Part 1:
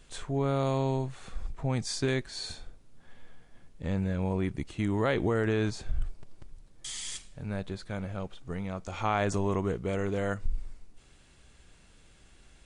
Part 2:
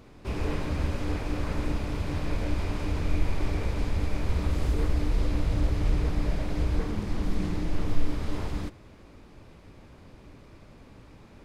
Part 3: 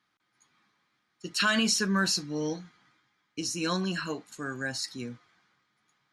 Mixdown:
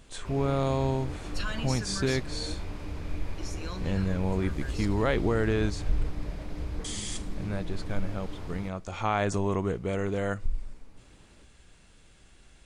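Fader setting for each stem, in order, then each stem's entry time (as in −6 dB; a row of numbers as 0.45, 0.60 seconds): +1.0, −8.0, −11.5 decibels; 0.00, 0.00, 0.00 seconds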